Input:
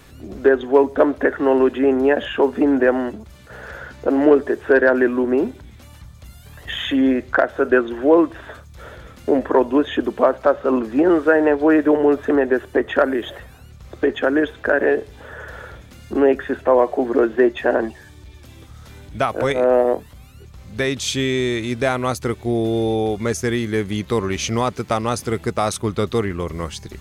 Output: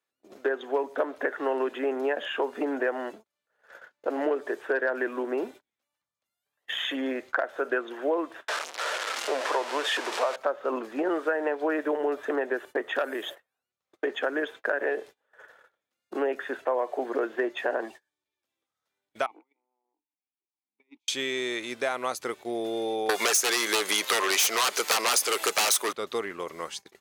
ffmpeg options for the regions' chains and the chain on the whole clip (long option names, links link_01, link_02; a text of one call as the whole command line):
ffmpeg -i in.wav -filter_complex "[0:a]asettb=1/sr,asplit=3[link_01][link_02][link_03];[link_01]atrim=end=8.484[link_04];[link_02]atrim=start=8.48:end=10.36,asetpts=PTS-STARTPTS,afade=type=in:duration=0.004:curve=qsin,afade=type=out:start_time=1.876:duration=0.004:curve=qsin,aeval=exprs='val(0)+0.5*0.133*sgn(val(0))':channel_layout=same,highpass=510,lowpass=7300[link_05];[link_03]atrim=start=10.356[link_06];[link_04][link_05]acrossfade=duration=0.004:curve1=hsin:curve2=qsin[link_07];[link_07][link_06]acrossfade=duration=0.004:curve1=qsin:curve2=hsin,asettb=1/sr,asplit=3[link_08][link_09][link_10];[link_08]atrim=end=12.954[link_11];[link_09]atrim=start=12.95:end=13.35,asetpts=PTS-STARTPTS,afade=type=in:duration=0.004:curve=qsin,afade=type=out:start_time=0.396:duration=0.004:curve=qsin,highshelf=frequency=5600:gain=8,aeval=exprs='(tanh(2.24*val(0)+0.2)-tanh(0.2))/2.24':channel_layout=same[link_12];[link_10]atrim=start=13.346[link_13];[link_11][link_12]acrossfade=duration=0.004:curve1=hsin:curve2=qsin[link_14];[link_14][link_13]acrossfade=duration=0.004:curve1=qsin:curve2=hsin,asettb=1/sr,asplit=3[link_15][link_16][link_17];[link_15]atrim=end=19.264[link_18];[link_16]atrim=start=19.26:end=21.08,asetpts=PTS-STARTPTS,afade=type=in:duration=0.004:curve=qsin,afade=type=out:start_time=1.816:duration=0.004:curve=qsin,acompressor=threshold=-20dB:ratio=5:attack=3.2:release=140:knee=1:detection=peak,asplit=3[link_19][link_20][link_21];[link_19]bandpass=frequency=300:width_type=q:width=8,volume=0dB[link_22];[link_20]bandpass=frequency=870:width_type=q:width=8,volume=-6dB[link_23];[link_21]bandpass=frequency=2240:width_type=q:width=8,volume=-9dB[link_24];[link_22][link_23][link_24]amix=inputs=3:normalize=0[link_25];[link_17]atrim=start=21.076[link_26];[link_18][link_25]acrossfade=duration=0.004:curve1=hsin:curve2=qsin[link_27];[link_27][link_26]acrossfade=duration=0.004:curve1=qsin:curve2=hsin,asettb=1/sr,asplit=3[link_28][link_29][link_30];[link_28]atrim=end=23.094[link_31];[link_29]atrim=start=23.09:end=25.93,asetpts=PTS-STARTPTS,afade=type=in:duration=0.004:curve=qsin,afade=type=out:start_time=2.836:duration=0.004:curve=qsin,highpass=470,aeval=exprs='0.531*sin(PI/2*7.94*val(0)/0.531)':channel_layout=same,highshelf=frequency=4600:gain=8[link_32];[link_30]atrim=start=25.926[link_33];[link_31][link_32]acrossfade=duration=0.004:curve1=hsin:curve2=qsin[link_34];[link_34][link_33]acrossfade=duration=0.004:curve1=qsin:curve2=hsin,agate=range=-32dB:threshold=-32dB:ratio=16:detection=peak,highpass=490,acompressor=threshold=-19dB:ratio=4,volume=-4.5dB" out.wav